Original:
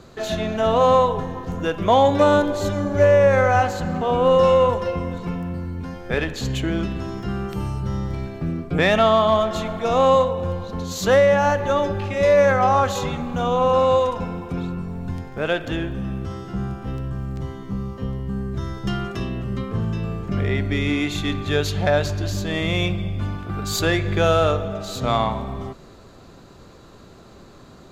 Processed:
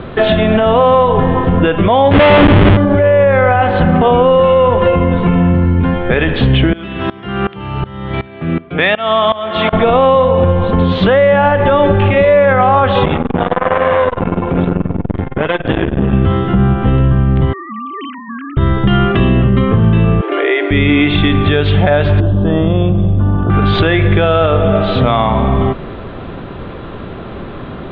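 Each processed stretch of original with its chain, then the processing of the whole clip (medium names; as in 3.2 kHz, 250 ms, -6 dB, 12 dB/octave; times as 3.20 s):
2.11–2.77 s: median filter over 9 samples + Schmitt trigger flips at -22.5 dBFS
6.73–9.73 s: high-pass 56 Hz + tilt EQ +2.5 dB/octave + sawtooth tremolo in dB swelling 2.7 Hz, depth 21 dB
13.05–16.13 s: treble shelf 3.8 kHz -5.5 dB + transformer saturation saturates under 950 Hz
17.53–18.57 s: formants replaced by sine waves + high-pass 840 Hz
20.21–20.71 s: Chebyshev high-pass 290 Hz, order 10 + compression 2.5:1, threshold -30 dBFS
22.20–23.50 s: boxcar filter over 20 samples + compression, threshold -26 dBFS
whole clip: Chebyshev low-pass 3.4 kHz, order 5; compression 3:1, threshold -26 dBFS; loudness maximiser +20.5 dB; trim -1 dB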